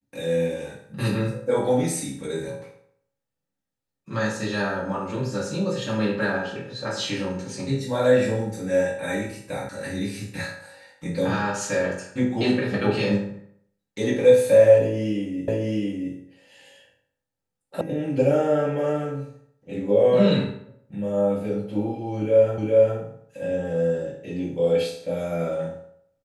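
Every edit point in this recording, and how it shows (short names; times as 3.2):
9.69 sound cut off
15.48 repeat of the last 0.67 s
17.81 sound cut off
22.58 repeat of the last 0.41 s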